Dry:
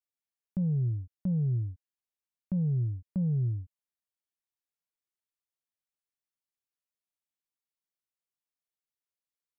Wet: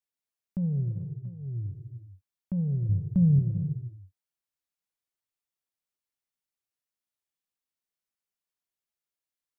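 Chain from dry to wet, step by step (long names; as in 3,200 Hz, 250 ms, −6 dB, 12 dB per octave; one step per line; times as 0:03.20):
0:00.84–0:01.69: duck −17 dB, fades 0.32 s
0:02.89–0:03.39: bass and treble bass +9 dB, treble +4 dB
reverb whose tail is shaped and stops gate 470 ms flat, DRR 8 dB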